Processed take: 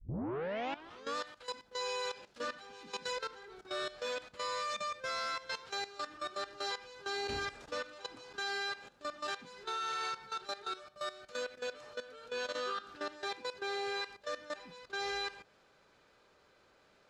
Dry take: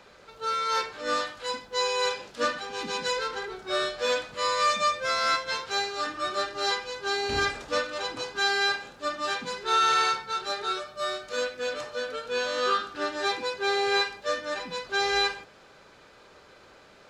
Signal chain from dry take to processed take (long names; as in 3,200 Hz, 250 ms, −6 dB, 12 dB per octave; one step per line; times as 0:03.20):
turntable start at the beginning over 1.16 s
output level in coarse steps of 15 dB
level −7 dB